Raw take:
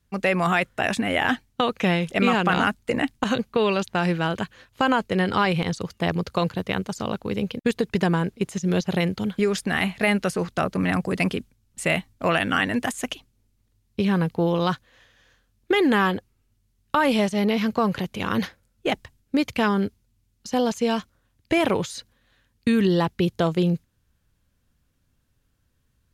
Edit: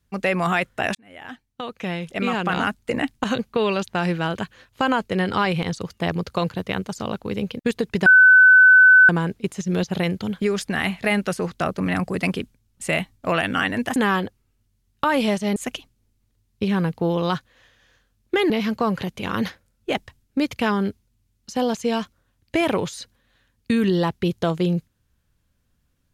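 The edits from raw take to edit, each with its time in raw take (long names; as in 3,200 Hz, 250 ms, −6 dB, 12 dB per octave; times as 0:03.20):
0:00.95–0:02.94: fade in
0:08.06: insert tone 1,510 Hz −7.5 dBFS 1.03 s
0:15.87–0:17.47: move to 0:12.93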